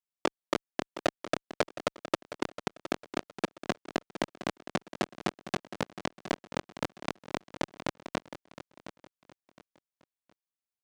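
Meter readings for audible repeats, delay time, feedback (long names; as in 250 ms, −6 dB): 3, 715 ms, 30%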